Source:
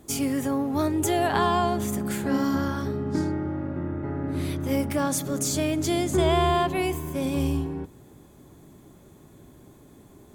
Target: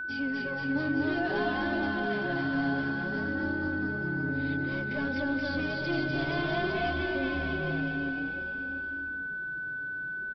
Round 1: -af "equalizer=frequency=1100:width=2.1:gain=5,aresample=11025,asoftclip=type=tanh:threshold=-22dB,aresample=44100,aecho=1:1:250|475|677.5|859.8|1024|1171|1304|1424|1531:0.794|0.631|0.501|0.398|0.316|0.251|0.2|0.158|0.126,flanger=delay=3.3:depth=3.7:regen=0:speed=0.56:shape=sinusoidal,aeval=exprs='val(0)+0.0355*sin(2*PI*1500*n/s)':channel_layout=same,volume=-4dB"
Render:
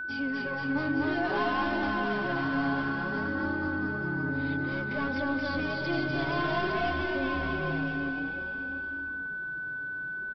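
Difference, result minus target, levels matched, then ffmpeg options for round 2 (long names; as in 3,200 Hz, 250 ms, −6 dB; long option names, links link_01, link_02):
1,000 Hz band +3.5 dB
-af "equalizer=frequency=1100:width=2.1:gain=-7,aresample=11025,asoftclip=type=tanh:threshold=-22dB,aresample=44100,aecho=1:1:250|475|677.5|859.8|1024|1171|1304|1424|1531:0.794|0.631|0.501|0.398|0.316|0.251|0.2|0.158|0.126,flanger=delay=3.3:depth=3.7:regen=0:speed=0.56:shape=sinusoidal,aeval=exprs='val(0)+0.0355*sin(2*PI*1500*n/s)':channel_layout=same,volume=-4dB"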